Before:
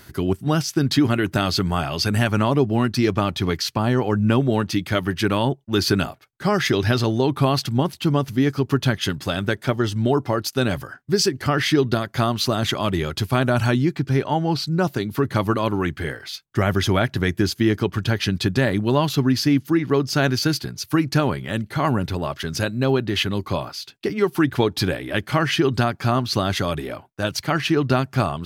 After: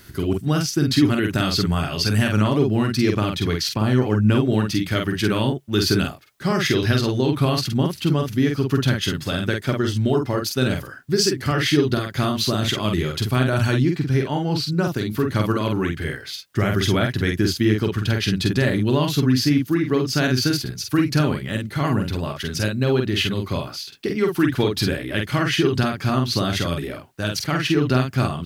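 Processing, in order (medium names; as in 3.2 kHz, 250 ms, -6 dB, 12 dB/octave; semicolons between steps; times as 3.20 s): peaking EQ 820 Hz -6.5 dB 1.2 oct; word length cut 12-bit, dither triangular; doubling 47 ms -4 dB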